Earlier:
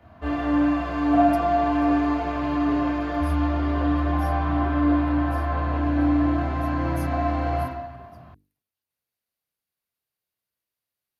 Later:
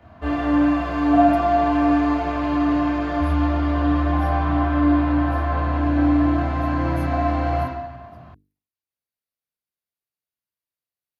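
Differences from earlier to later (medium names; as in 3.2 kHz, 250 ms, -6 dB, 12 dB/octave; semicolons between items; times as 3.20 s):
speech -6.5 dB; background +3.0 dB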